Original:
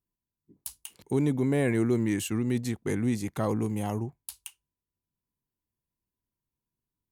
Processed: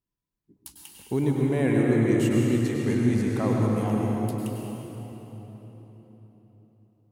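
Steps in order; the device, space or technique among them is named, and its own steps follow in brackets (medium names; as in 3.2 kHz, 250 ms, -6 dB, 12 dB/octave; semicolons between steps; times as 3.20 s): swimming-pool hall (reverberation RT60 4.1 s, pre-delay 94 ms, DRR -2 dB; treble shelf 5.1 kHz -7 dB)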